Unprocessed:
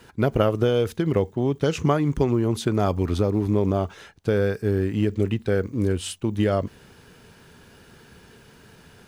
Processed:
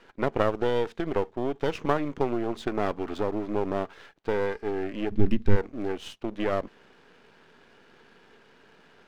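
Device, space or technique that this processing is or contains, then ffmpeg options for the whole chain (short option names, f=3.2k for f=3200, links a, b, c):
crystal radio: -filter_complex "[0:a]highpass=280,lowpass=3.2k,aeval=exprs='if(lt(val(0),0),0.251*val(0),val(0))':c=same,asplit=3[a][b][c];[a]afade=t=out:st=5.1:d=0.02[d];[b]asubboost=boost=11.5:cutoff=180,afade=t=in:st=5.1:d=0.02,afade=t=out:st=5.55:d=0.02[e];[c]afade=t=in:st=5.55:d=0.02[f];[d][e][f]amix=inputs=3:normalize=0"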